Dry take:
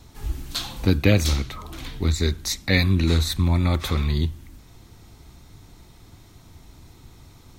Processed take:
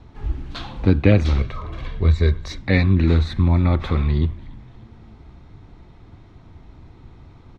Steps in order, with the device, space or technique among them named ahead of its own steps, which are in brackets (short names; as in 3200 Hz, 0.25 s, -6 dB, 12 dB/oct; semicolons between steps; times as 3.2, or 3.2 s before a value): 1.37–2.59 comb 1.8 ms, depth 58%; frequency-shifting echo 0.289 s, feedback 45%, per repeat -100 Hz, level -21 dB; phone in a pocket (LPF 3200 Hz 12 dB/oct; high shelf 2400 Hz -8.5 dB); gain +3.5 dB